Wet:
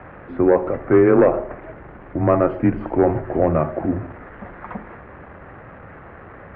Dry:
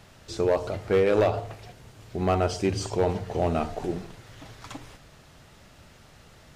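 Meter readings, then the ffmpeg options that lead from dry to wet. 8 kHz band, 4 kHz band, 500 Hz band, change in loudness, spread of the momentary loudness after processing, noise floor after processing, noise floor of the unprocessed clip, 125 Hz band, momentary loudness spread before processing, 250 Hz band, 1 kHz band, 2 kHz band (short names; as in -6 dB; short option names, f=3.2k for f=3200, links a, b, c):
under -35 dB, under -15 dB, +7.5 dB, +8.0 dB, 21 LU, -41 dBFS, -53 dBFS, +5.5 dB, 21 LU, +11.0 dB, +5.5 dB, +5.5 dB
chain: -af "aeval=exprs='val(0)+0.5*0.00794*sgn(val(0))':c=same,highpass=f=150:t=q:w=0.5412,highpass=f=150:t=q:w=1.307,lowpass=f=2k:t=q:w=0.5176,lowpass=f=2k:t=q:w=0.7071,lowpass=f=2k:t=q:w=1.932,afreqshift=-78,volume=8dB"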